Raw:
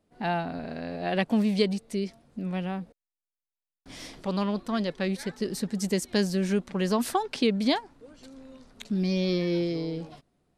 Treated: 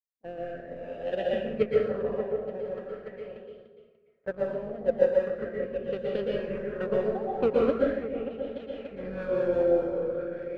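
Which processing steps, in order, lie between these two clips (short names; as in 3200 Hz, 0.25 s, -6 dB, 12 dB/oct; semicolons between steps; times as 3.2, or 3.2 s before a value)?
octaver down 2 oct, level -2 dB; low-pass opened by the level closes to 320 Hz, open at -20.5 dBFS; vowel filter e; tilt shelf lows +9.5 dB, about 1500 Hz; power-law curve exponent 1.4; repeats that get brighter 0.291 s, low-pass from 400 Hz, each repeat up 2 oct, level -6 dB; transient shaper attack +4 dB, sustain -8 dB; rotary speaker horn 0.9 Hz, later 5 Hz, at 5.21; gate -50 dBFS, range -30 dB; low shelf 270 Hz +6 dB; plate-style reverb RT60 0.9 s, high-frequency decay 0.85×, pre-delay 0.105 s, DRR -3.5 dB; LFO bell 0.41 Hz 830–3300 Hz +12 dB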